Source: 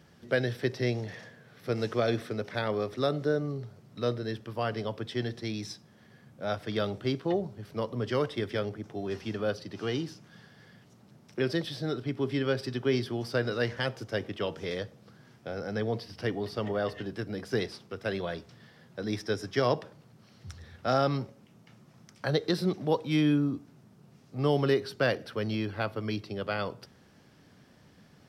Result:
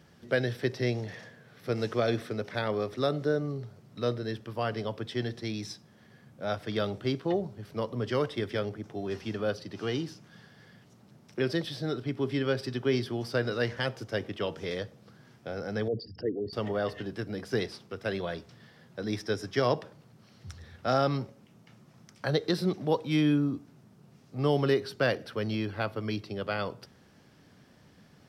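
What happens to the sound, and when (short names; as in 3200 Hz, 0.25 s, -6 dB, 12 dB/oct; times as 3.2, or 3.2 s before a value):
15.88–16.53 formant sharpening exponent 3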